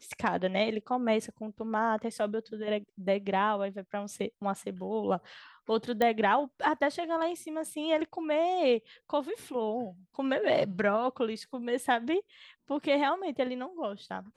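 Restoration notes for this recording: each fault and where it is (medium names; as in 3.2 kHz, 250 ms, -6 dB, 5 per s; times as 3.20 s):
6.02 s: pop -15 dBFS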